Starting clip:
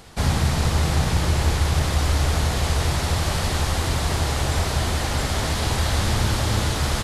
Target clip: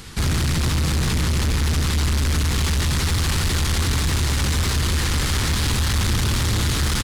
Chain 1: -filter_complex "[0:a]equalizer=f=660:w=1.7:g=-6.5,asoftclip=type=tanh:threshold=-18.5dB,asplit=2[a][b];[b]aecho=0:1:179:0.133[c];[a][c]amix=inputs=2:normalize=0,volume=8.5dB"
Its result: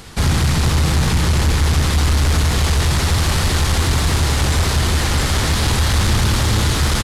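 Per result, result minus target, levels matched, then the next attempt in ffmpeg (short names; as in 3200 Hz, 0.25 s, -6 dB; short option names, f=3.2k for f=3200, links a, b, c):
soft clip: distortion -6 dB; 500 Hz band +2.0 dB
-filter_complex "[0:a]equalizer=f=660:w=1.7:g=-6.5,asoftclip=type=tanh:threshold=-26dB,asplit=2[a][b];[b]aecho=0:1:179:0.133[c];[a][c]amix=inputs=2:normalize=0,volume=8.5dB"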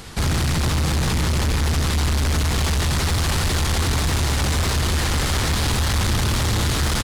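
500 Hz band +3.0 dB
-filter_complex "[0:a]equalizer=f=660:w=1.7:g=-16,asoftclip=type=tanh:threshold=-26dB,asplit=2[a][b];[b]aecho=0:1:179:0.133[c];[a][c]amix=inputs=2:normalize=0,volume=8.5dB"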